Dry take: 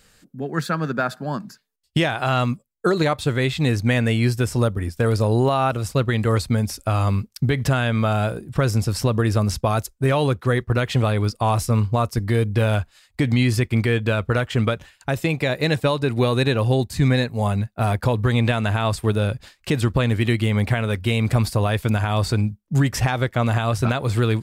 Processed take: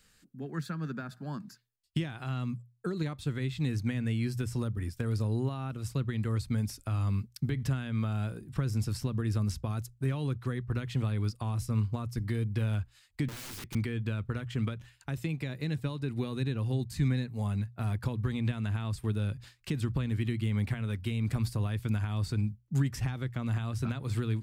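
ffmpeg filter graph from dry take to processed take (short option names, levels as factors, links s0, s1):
-filter_complex "[0:a]asettb=1/sr,asplit=3[s0][s1][s2];[s0]atrim=end=13.284[s3];[s1]atrim=start=13.28:end=13.75,asetpts=PTS-STARTPTS,afade=t=in:d=0.004:c=qsin,afade=t=out:st=0.466:d=0.004:c=qsin,highpass=f=120:w=0.5412,highpass=f=120:w=1.3066,aeval=exprs='(mod(15*val(0)+1,2)-1)/15':c=same[s4];[s2]atrim=start=13.746[s5];[s3][s4]acrossfade=d=0.004:c1=hsin:c2=qsin[s6];[s6][s5]acrossfade=d=0.004:c1=qsin:c2=hsin,equalizer=f=610:w=1.2:g=-7.5,bandreject=f=60:t=h:w=6,bandreject=f=120:t=h:w=6,acrossover=split=330[s7][s8];[s8]acompressor=threshold=0.0251:ratio=6[s9];[s7][s9]amix=inputs=2:normalize=0,volume=0.376"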